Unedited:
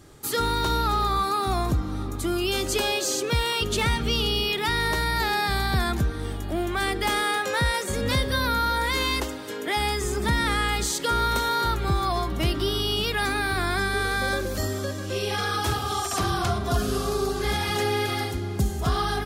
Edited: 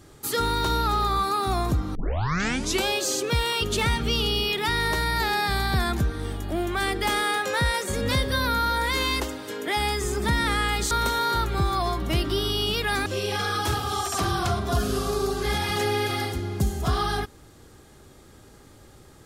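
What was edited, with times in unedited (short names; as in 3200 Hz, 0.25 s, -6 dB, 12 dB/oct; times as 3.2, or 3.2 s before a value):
1.95 tape start 0.92 s
10.91–11.21 cut
13.36–15.05 cut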